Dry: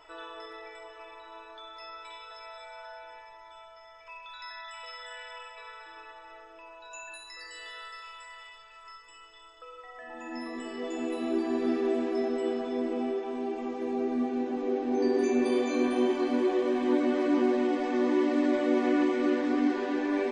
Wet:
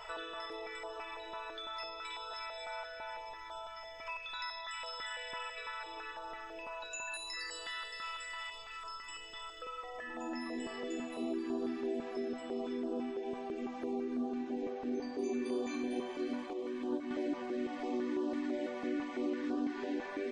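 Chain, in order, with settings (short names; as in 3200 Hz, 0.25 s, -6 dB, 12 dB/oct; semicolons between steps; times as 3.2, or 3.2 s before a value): 16.53–17.11 gate -23 dBFS, range -7 dB; compressor 3:1, threshold -46 dBFS, peak gain reduction 18 dB; stepped notch 6 Hz 300–2100 Hz; gain +7.5 dB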